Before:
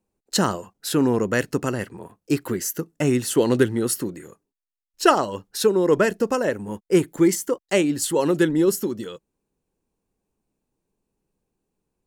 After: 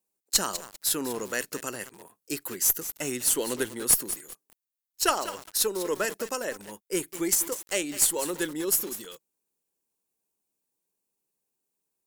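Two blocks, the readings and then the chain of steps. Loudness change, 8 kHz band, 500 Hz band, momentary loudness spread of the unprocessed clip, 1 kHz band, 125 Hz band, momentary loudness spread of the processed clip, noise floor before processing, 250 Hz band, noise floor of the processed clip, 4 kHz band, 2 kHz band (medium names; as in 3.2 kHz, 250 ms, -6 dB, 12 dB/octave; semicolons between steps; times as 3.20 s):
-5.0 dB, +4.0 dB, -11.5 dB, 10 LU, -8.0 dB, -18.5 dB, 12 LU, -85 dBFS, -13.5 dB, -84 dBFS, -1.0 dB, -5.5 dB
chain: RIAA curve recording; Chebyshev shaper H 2 -11 dB, 6 -44 dB, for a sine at 3.5 dBFS; bit-crushed delay 197 ms, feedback 35%, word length 4-bit, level -11 dB; trim -8 dB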